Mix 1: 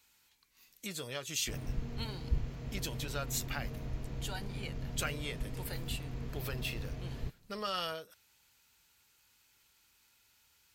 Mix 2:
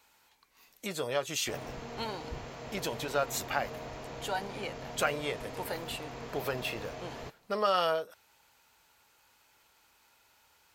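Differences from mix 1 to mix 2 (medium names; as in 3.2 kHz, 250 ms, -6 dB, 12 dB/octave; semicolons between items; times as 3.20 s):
background: add tilt EQ +3 dB/octave; master: add peaking EQ 720 Hz +13.5 dB 2.3 oct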